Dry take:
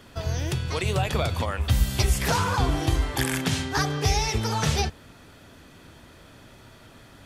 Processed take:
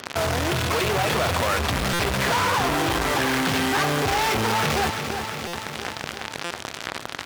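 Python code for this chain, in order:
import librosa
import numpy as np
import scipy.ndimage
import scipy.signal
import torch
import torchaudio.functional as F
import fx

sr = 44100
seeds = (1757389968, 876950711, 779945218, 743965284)

p1 = fx.cvsd(x, sr, bps=32000)
p2 = fx.lowpass(p1, sr, hz=1100.0, slope=6)
p3 = fx.low_shelf(p2, sr, hz=100.0, db=-11.0)
p4 = fx.tube_stage(p3, sr, drive_db=23.0, bias=0.35)
p5 = fx.fuzz(p4, sr, gain_db=54.0, gate_db=-47.0)
p6 = p4 + (p5 * 10.0 ** (-5.0 / 20.0))
p7 = scipy.signal.sosfilt(scipy.signal.butter(2, 62.0, 'highpass', fs=sr, output='sos'), p6)
p8 = fx.low_shelf(p7, sr, hz=490.0, db=-9.0)
p9 = p8 + fx.echo_feedback(p8, sr, ms=344, feedback_pct=54, wet_db=-13.5, dry=0)
p10 = fx.buffer_glitch(p9, sr, at_s=(1.93, 5.47, 6.44), block=256, repeats=10)
p11 = fx.env_flatten(p10, sr, amount_pct=50)
y = p11 * 10.0 ** (-2.0 / 20.0)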